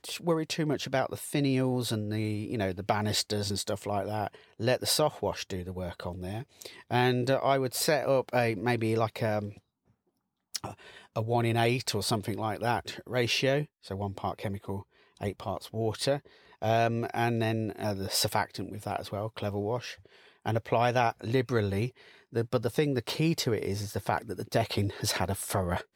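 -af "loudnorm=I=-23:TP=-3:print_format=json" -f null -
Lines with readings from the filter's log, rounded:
"input_i" : "-30.4",
"input_tp" : "-12.6",
"input_lra" : "3.2",
"input_thresh" : "-40.6",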